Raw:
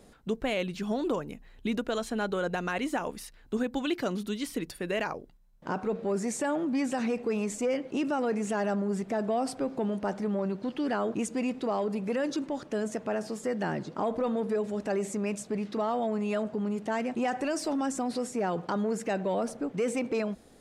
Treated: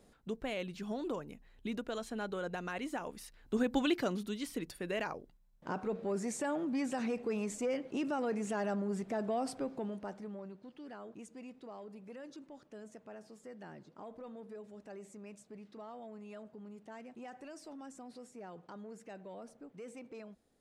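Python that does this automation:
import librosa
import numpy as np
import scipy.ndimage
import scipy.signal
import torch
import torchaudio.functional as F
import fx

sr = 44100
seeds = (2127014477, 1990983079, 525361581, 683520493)

y = fx.gain(x, sr, db=fx.line((3.11, -8.5), (3.78, 0.5), (4.26, -6.0), (9.57, -6.0), (10.67, -19.0)))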